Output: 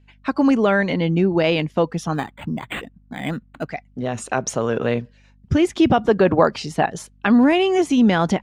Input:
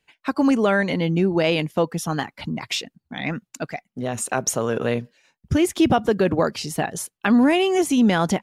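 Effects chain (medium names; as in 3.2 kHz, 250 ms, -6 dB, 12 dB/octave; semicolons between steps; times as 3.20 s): 6.09–6.86 s: dynamic bell 910 Hz, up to +6 dB, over -32 dBFS, Q 0.84; hum 50 Hz, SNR 34 dB; distance through air 82 m; 2.14–3.69 s: decimation joined by straight lines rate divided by 8×; trim +2 dB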